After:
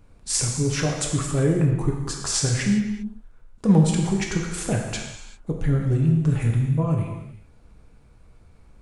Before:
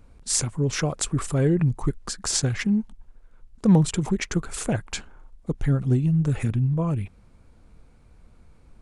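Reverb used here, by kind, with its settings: non-linear reverb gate 0.42 s falling, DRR -0.5 dB; gain -1.5 dB

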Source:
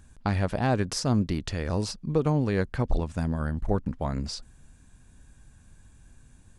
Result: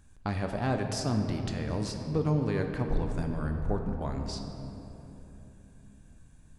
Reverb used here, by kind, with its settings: shoebox room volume 190 m³, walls hard, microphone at 0.31 m; gain -5.5 dB

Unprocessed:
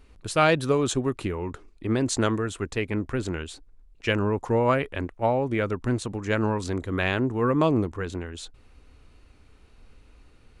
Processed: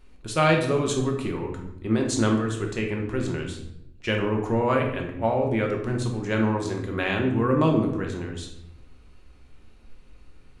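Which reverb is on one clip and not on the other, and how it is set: shoebox room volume 240 m³, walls mixed, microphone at 0.97 m; gain -2.5 dB

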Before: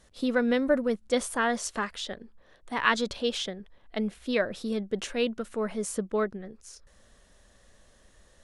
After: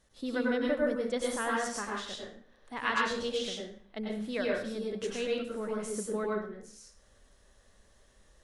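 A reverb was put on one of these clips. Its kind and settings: plate-style reverb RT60 0.52 s, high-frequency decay 0.8×, pre-delay 85 ms, DRR -3 dB; gain -8.5 dB

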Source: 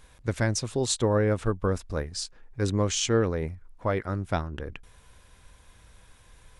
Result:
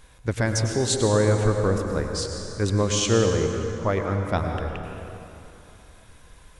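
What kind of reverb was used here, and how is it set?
plate-style reverb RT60 3.1 s, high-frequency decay 0.65×, pre-delay 85 ms, DRR 3.5 dB; gain +2.5 dB

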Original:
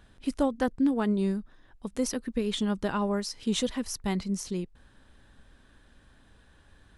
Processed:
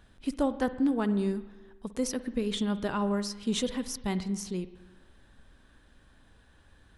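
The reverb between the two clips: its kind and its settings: spring tank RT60 1.2 s, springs 49/59 ms, chirp 25 ms, DRR 12.5 dB; gain -1.5 dB

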